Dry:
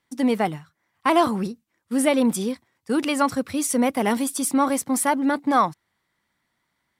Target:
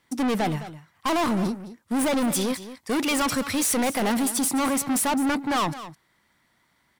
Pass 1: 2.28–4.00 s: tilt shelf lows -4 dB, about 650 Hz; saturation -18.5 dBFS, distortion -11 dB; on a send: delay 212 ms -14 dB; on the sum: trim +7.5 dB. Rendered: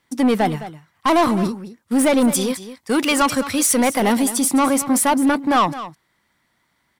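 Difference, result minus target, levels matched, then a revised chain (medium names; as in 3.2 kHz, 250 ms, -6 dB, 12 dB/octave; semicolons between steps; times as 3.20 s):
saturation: distortion -7 dB
2.28–4.00 s: tilt shelf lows -4 dB, about 650 Hz; saturation -29 dBFS, distortion -5 dB; on a send: delay 212 ms -14 dB; on the sum: trim +7.5 dB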